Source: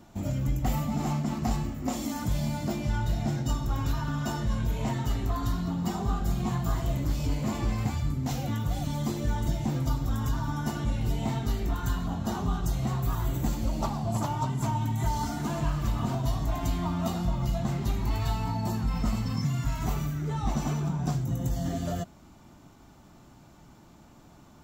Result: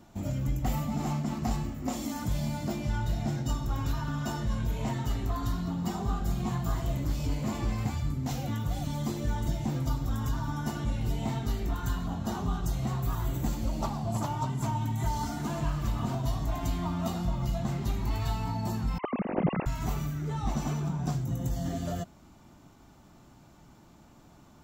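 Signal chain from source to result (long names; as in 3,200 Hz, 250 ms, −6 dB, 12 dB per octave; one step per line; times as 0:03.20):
0:18.98–0:19.66: three sine waves on the formant tracks
level −2 dB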